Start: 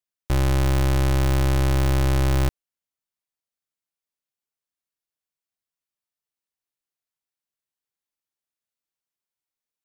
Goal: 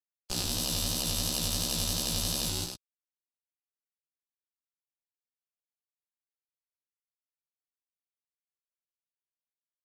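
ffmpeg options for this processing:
-filter_complex "[0:a]aecho=1:1:6.3:0.38,acrossover=split=150|4400[a][b][c];[a]alimiter=level_in=4dB:limit=-24dB:level=0:latency=1:release=405,volume=-4dB[d];[b]aeval=exprs='0.2*(cos(1*acos(clip(val(0)/0.2,-1,1)))-cos(1*PI/2))+0.0631*(cos(2*acos(clip(val(0)/0.2,-1,1)))-cos(2*PI/2))+0.00794*(cos(5*acos(clip(val(0)/0.2,-1,1)))-cos(5*PI/2))+0.00282*(cos(8*acos(clip(val(0)/0.2,-1,1)))-cos(8*PI/2))':c=same[e];[d][e][c]amix=inputs=3:normalize=0,aresample=32000,aresample=44100,aeval=exprs='val(0)*gte(abs(val(0)),0.0447)':c=same,afftdn=nr=24:nf=-42,aecho=1:1:154.5|253.6:0.708|0.398,aeval=exprs='val(0)*sin(2*PI*39*n/s)':c=same,aexciter=amount=8.3:drive=8.7:freq=3.2k,lowshelf=f=79:g=11,flanger=delay=15.5:depth=6.1:speed=2.9,volume=-8.5dB"

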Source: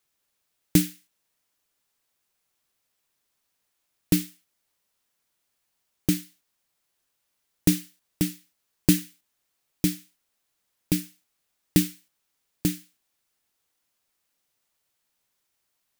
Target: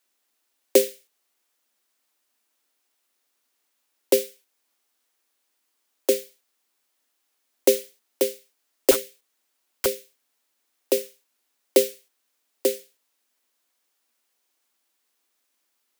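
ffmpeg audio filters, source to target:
-filter_complex "[0:a]afreqshift=220,asettb=1/sr,asplit=3[a][b][c];[a]atrim=end=8.914[d];[b]atrim=start=8.91:end=9.86,asetpts=PTS-STARTPTS,afade=t=in:d=0.004:c=qsin,afade=t=out:st=0.946:d=0.004:c=qsin,aeval=exprs='(mod(8.41*val(0)+1,2)-1)/8.41':c=same[e];[c]atrim=start=9.856[f];[d][e]acrossfade=d=0.004:c1=hsin:c2=qsin[g];[g][f]acrossfade=d=0.004:c1=qsin:c2=hsin,volume=2.5dB"

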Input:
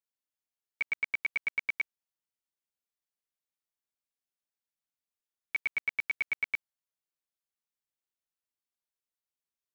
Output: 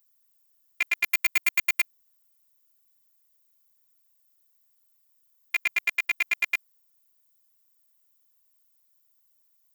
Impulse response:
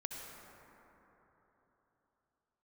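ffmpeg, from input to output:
-filter_complex "[0:a]asettb=1/sr,asplit=3[a][b][c];[a]atrim=end=1.044[d];[b]atrim=start=1.04:end=1.81,asetpts=PTS-STARTPTS,afade=t=in:d=0.004:c=qsin,afade=t=out:st=0.766:d=0.004:c=qsin,aeval=exprs='0.075*(cos(1*acos(clip(val(0)/0.075,-1,1)))-cos(1*PI/2))+0.00531*(cos(3*acos(clip(val(0)/0.075,-1,1)))-cos(3*PI/2))+0.00299*(cos(4*acos(clip(val(0)/0.075,-1,1)))-cos(4*PI/2))+0.00841*(cos(8*acos(clip(val(0)/0.075,-1,1)))-cos(8*PI/2))':c=same[e];[c]atrim=start=1.806[f];[d][e]acrossfade=d=0.004:c1=hsin:c2=qsin[g];[g][f]acrossfade=d=0.004:c1=qsin:c2=hsin,aemphasis=mode=production:type=riaa,asplit=2[h][i];[i]adynamicsmooth=sensitivity=7:basefreq=2.3k,volume=-2dB[j];[h][j]amix=inputs=2:normalize=0,afftfilt=real='hypot(re,im)*cos(PI*b)':imag='0':win_size=512:overlap=0.75,volume=8dB"

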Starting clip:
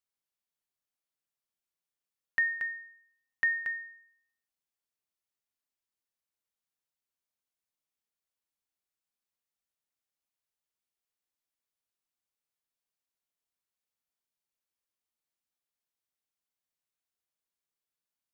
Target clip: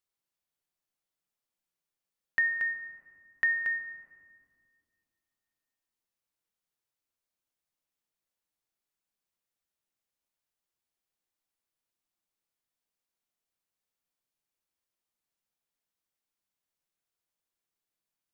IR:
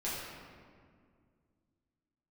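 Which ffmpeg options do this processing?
-filter_complex "[0:a]asplit=2[a][b];[b]highshelf=f=2k:g=-11[c];[1:a]atrim=start_sample=2205[d];[c][d]afir=irnorm=-1:irlink=0,volume=-7dB[e];[a][e]amix=inputs=2:normalize=0"

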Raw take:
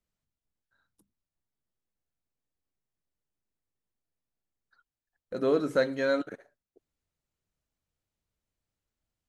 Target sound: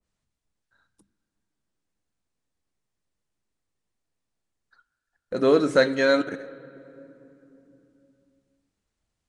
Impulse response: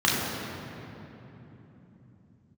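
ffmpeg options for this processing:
-filter_complex "[0:a]aresample=22050,aresample=44100,asplit=2[a][b];[b]highshelf=f=2.5k:g=9[c];[1:a]atrim=start_sample=2205,lowpass=3.8k,lowshelf=f=160:g=-9[d];[c][d]afir=irnorm=-1:irlink=0,volume=-34dB[e];[a][e]amix=inputs=2:normalize=0,adynamicequalizer=threshold=0.01:dfrequency=1600:dqfactor=0.7:tfrequency=1600:tqfactor=0.7:attack=5:release=100:ratio=0.375:range=2:mode=boostabove:tftype=highshelf,volume=6.5dB"

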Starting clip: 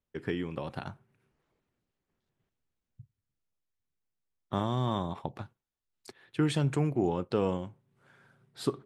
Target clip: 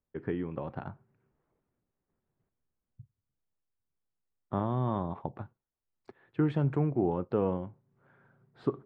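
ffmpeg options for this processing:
-af "lowpass=1.4k"

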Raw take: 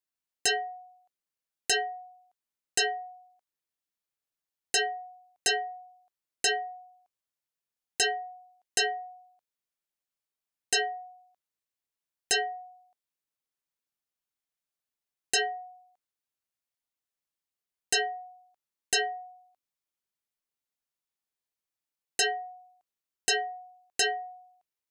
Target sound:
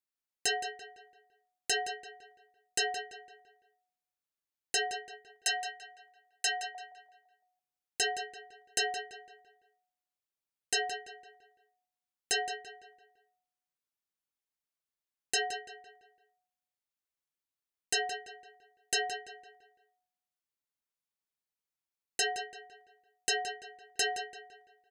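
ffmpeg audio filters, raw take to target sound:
-filter_complex "[0:a]asettb=1/sr,asplit=3[a][b][c];[a]atrim=end=5.134[d];[b]atrim=start=5.13:end=6.75,asetpts=PTS-STARTPTS,afade=t=in:d=0.004:c=qsin,afade=t=out:st=1.616:d=0.004:c=qsin,highpass=f=590:w=0.5412,highpass=f=590:w=1.3066[e];[c]atrim=start=6.746[f];[d][e]acrossfade=d=0.004:c1=hsin:c2=qsin[g];[g][f]acrossfade=d=0.004:c1=qsin:c2=hsin,asplit=2[h][i];[i]adelay=169,lowpass=f=3.9k:p=1,volume=-8.5dB,asplit=2[j][k];[k]adelay=169,lowpass=f=3.9k:p=1,volume=0.43,asplit=2[l][m];[m]adelay=169,lowpass=f=3.9k:p=1,volume=0.43,asplit=2[n][o];[o]adelay=169,lowpass=f=3.9k:p=1,volume=0.43,asplit=2[p][q];[q]adelay=169,lowpass=f=3.9k:p=1,volume=0.43[r];[h][j][l][n][p][r]amix=inputs=6:normalize=0,volume=-4.5dB"

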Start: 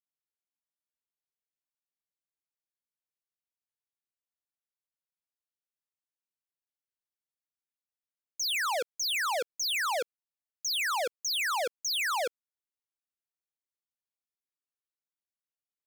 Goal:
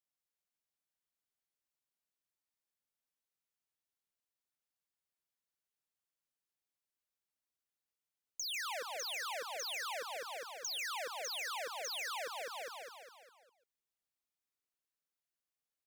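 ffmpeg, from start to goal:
-filter_complex "[0:a]asplit=2[a][b];[b]aecho=0:1:203|406|609|812|1015|1218:0.447|0.219|0.107|0.0526|0.0258|0.0126[c];[a][c]amix=inputs=2:normalize=0,acompressor=threshold=-40dB:ratio=6,asplit=2[d][e];[e]aecho=0:1:143:0.335[f];[d][f]amix=inputs=2:normalize=0,volume=-1dB"

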